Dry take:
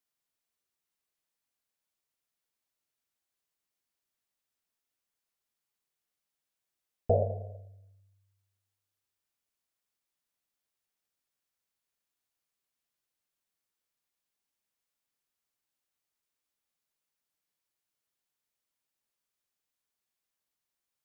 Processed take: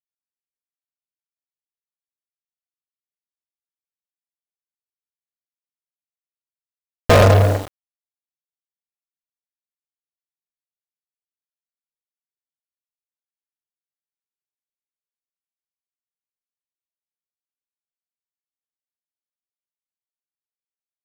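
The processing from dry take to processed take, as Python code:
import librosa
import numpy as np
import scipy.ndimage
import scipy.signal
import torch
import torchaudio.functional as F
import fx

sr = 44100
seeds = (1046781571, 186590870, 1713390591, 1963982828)

y = fx.fuzz(x, sr, gain_db=41.0, gate_db=-48.0)
y = fx.quant_dither(y, sr, seeds[0], bits=6, dither='none')
y = y * librosa.db_to_amplitude(4.5)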